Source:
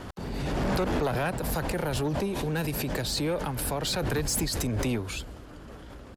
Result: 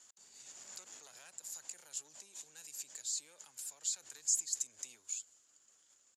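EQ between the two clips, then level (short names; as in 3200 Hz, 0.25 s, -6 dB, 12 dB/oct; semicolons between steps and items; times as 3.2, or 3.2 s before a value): band-pass 7000 Hz, Q 11; +7.0 dB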